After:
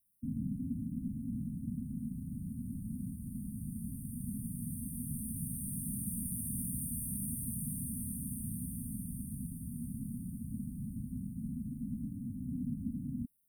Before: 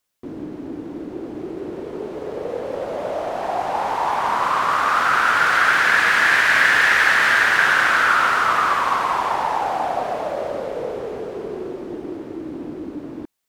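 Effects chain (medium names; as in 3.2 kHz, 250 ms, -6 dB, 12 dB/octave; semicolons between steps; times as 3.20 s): brick-wall FIR band-stop 260–8600 Hz; trim +3 dB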